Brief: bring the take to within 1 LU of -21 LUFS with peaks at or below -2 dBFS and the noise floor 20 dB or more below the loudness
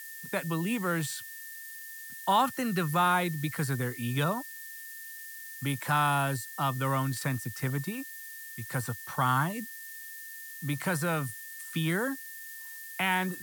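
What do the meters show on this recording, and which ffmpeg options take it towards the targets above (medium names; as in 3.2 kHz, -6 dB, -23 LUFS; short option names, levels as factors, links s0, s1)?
steady tone 1.8 kHz; tone level -45 dBFS; noise floor -44 dBFS; noise floor target -52 dBFS; loudness -31.5 LUFS; peak level -14.0 dBFS; loudness target -21.0 LUFS
-> -af "bandreject=f=1800:w=30"
-af "afftdn=nr=8:nf=-44"
-af "volume=3.35"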